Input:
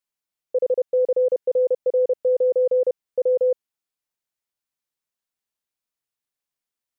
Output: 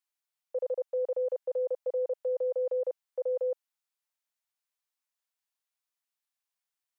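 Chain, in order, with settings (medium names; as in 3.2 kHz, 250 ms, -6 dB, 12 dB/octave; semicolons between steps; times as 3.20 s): high-pass 640 Hz 24 dB/octave; trim -2 dB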